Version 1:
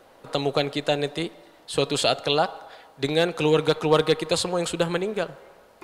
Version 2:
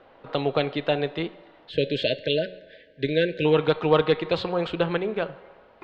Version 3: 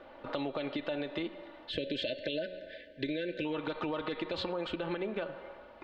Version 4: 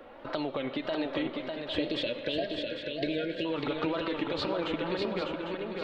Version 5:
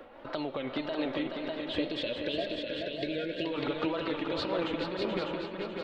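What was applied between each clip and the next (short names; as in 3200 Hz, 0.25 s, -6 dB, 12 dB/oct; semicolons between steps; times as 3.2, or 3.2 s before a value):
LPF 3400 Hz 24 dB/oct; de-hum 183.8 Hz, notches 27; spectral delete 1.7–3.45, 660–1500 Hz
comb 3.4 ms, depth 53%; limiter -17.5 dBFS, peak gain reduction 10 dB; compressor, threshold -32 dBFS, peak gain reduction 10 dB
wow and flutter 130 cents; swung echo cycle 0.8 s, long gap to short 3:1, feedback 33%, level -4.5 dB; on a send at -19.5 dB: reverb RT60 1.6 s, pre-delay 97 ms; on the sum: gain +2.5 dB
echo 0.429 s -7 dB; noise-modulated level, depth 65%; gain +1.5 dB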